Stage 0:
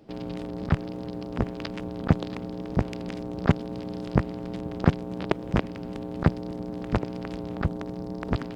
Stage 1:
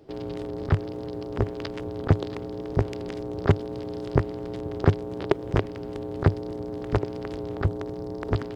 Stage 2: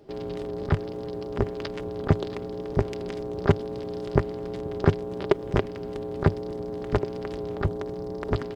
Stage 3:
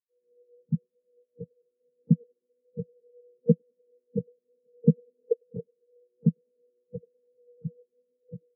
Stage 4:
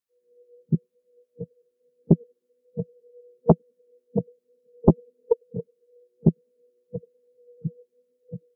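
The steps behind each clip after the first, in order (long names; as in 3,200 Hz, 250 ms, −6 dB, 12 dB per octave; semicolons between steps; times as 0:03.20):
thirty-one-band graphic EQ 100 Hz +8 dB, 200 Hz −12 dB, 400 Hz +8 dB, 2,500 Hz −3 dB
comb filter 5 ms, depth 33%
frequency shifter +67 Hz; feedback echo with a high-pass in the loop 101 ms, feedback 84%, high-pass 260 Hz, level −12 dB; every bin expanded away from the loudest bin 4 to 1; level −1.5 dB
highs frequency-modulated by the lows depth 0.92 ms; level +5 dB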